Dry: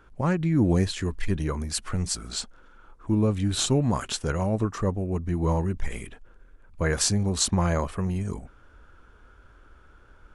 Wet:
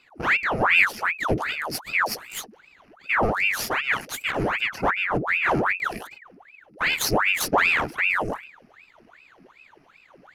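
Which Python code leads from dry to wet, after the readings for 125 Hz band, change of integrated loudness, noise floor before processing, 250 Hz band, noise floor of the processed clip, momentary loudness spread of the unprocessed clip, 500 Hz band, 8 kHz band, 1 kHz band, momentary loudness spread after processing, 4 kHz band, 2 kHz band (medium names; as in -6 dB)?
-10.5 dB, +3.5 dB, -54 dBFS, -6.5 dB, -56 dBFS, 11 LU, +1.0 dB, -4.5 dB, +9.5 dB, 12 LU, +2.0 dB, +17.5 dB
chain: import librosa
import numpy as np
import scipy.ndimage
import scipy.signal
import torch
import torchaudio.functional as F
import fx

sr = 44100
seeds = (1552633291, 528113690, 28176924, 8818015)

y = fx.lower_of_two(x, sr, delay_ms=0.58)
y = fx.ripple_eq(y, sr, per_octave=0.85, db=17)
y = fx.ring_lfo(y, sr, carrier_hz=1400.0, swing_pct=85, hz=2.6)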